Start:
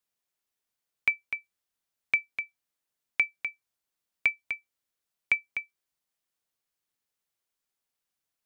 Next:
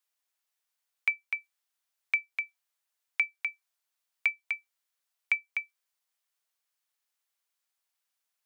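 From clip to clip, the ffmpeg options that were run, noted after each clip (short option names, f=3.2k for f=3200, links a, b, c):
-af "alimiter=limit=-17dB:level=0:latency=1:release=380,highpass=720,volume=2dB"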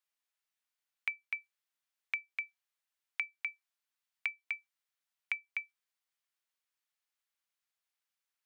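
-af "equalizer=f=2.1k:t=o:w=2.5:g=5.5,acompressor=threshold=-23dB:ratio=6,volume=-8.5dB"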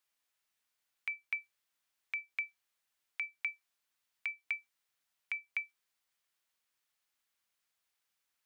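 -af "alimiter=level_in=5dB:limit=-24dB:level=0:latency=1,volume=-5dB,volume=5.5dB"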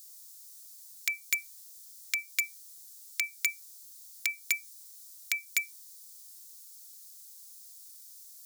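-filter_complex "[0:a]acrossover=split=1100|1800[a][b][c];[a]aeval=exprs='(mod(668*val(0)+1,2)-1)/668':c=same[d];[d][b][c]amix=inputs=3:normalize=0,aexciter=amount=14:drive=6.4:freq=4.1k,volume=7.5dB"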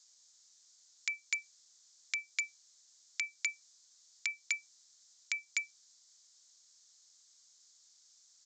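-af "bandreject=f=50:t=h:w=6,bandreject=f=100:t=h:w=6,bandreject=f=150:t=h:w=6,acrusher=bits=9:mode=log:mix=0:aa=0.000001,aresample=16000,aresample=44100,volume=-4.5dB"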